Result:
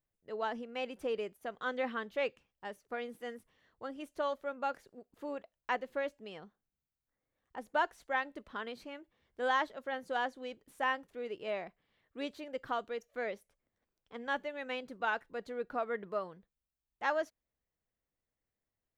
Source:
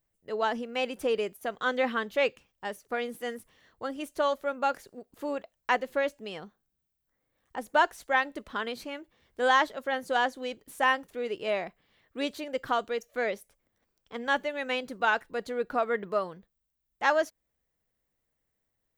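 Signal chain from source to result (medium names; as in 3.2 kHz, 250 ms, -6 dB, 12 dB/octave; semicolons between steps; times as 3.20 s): treble shelf 5.4 kHz -9 dB; trim -7.5 dB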